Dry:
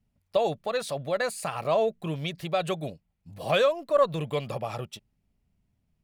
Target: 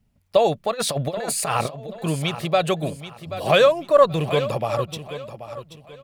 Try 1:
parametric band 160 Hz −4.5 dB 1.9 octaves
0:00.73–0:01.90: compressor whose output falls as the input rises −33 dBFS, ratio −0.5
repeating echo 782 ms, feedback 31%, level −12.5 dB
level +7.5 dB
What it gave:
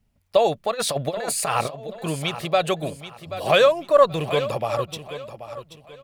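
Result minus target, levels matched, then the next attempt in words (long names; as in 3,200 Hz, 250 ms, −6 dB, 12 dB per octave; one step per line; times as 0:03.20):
125 Hz band −3.5 dB
0:00.73–0:01.90: compressor whose output falls as the input rises −33 dBFS, ratio −0.5
repeating echo 782 ms, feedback 31%, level −12.5 dB
level +7.5 dB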